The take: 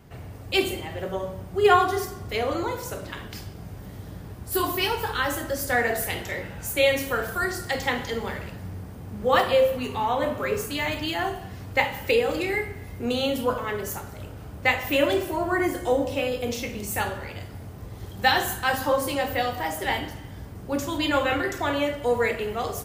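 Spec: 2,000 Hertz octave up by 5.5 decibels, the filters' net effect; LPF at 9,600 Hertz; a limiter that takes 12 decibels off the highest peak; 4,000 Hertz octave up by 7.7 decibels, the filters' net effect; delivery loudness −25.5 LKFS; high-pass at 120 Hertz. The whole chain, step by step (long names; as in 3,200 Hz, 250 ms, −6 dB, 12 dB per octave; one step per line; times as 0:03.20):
high-pass filter 120 Hz
low-pass filter 9,600 Hz
parametric band 2,000 Hz +4.5 dB
parametric band 4,000 Hz +8.5 dB
level −0.5 dB
brickwall limiter −13.5 dBFS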